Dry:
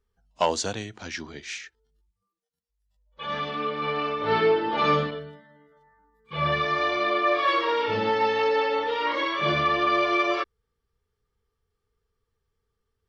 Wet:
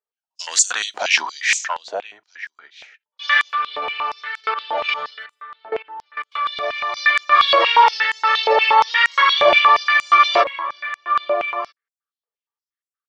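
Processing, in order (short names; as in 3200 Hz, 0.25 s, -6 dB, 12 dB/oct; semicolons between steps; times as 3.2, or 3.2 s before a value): gate -53 dBFS, range -28 dB; 3.42–6.97 level quantiser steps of 20 dB; outdoor echo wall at 220 m, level -12 dB; maximiser +21 dB; stepped high-pass 8.5 Hz 640–7400 Hz; gain -7.5 dB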